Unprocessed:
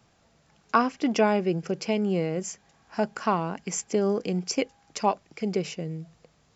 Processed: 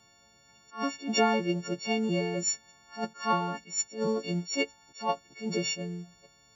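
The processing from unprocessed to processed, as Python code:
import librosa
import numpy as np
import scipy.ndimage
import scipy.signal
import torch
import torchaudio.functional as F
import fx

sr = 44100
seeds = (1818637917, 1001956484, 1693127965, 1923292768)

y = fx.freq_snap(x, sr, grid_st=4)
y = fx.attack_slew(y, sr, db_per_s=190.0)
y = F.gain(torch.from_numpy(y), -3.0).numpy()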